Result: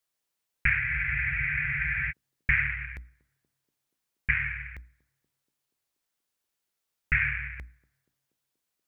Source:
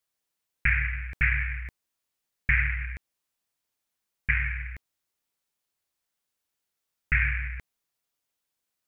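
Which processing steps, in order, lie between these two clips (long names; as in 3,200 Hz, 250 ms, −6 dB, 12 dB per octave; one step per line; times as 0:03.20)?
mains-hum notches 60/120/180/240/300 Hz
feedback echo with a band-pass in the loop 239 ms, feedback 71%, band-pass 360 Hz, level −23 dB
frozen spectrum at 0:00.82, 1.27 s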